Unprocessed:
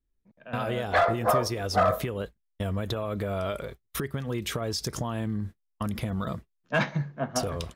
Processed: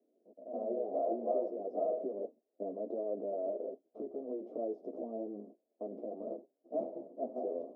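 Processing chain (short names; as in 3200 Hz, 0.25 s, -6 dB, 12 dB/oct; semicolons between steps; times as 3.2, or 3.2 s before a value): per-bin compression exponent 0.6; elliptic band-pass 260–640 Hz, stop band 50 dB; ensemble effect; gain -4.5 dB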